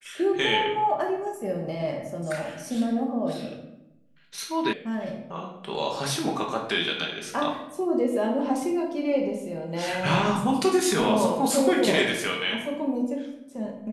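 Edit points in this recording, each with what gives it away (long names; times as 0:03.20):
0:04.73: cut off before it has died away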